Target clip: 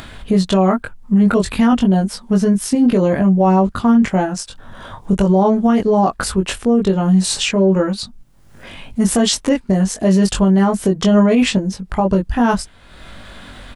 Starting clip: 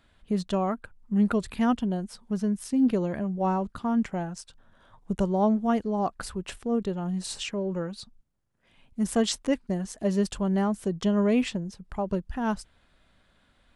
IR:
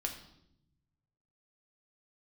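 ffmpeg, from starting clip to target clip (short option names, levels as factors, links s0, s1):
-filter_complex "[0:a]asplit=2[s0][s1];[s1]adelay=21,volume=0.75[s2];[s0][s2]amix=inputs=2:normalize=0,acompressor=mode=upward:threshold=0.0126:ratio=2.5,alimiter=level_in=8.91:limit=0.891:release=50:level=0:latency=1,volume=0.562"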